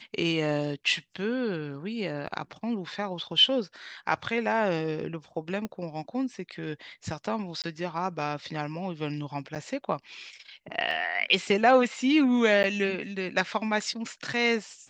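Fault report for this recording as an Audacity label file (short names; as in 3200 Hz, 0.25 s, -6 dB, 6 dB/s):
2.270000	2.270000	gap 4.9 ms
5.650000	5.650000	pop -20 dBFS
7.620000	7.640000	gap 18 ms
9.550000	9.560000	gap 7.6 ms
10.910000	10.910000	gap 2 ms
12.630000	12.640000	gap 9.7 ms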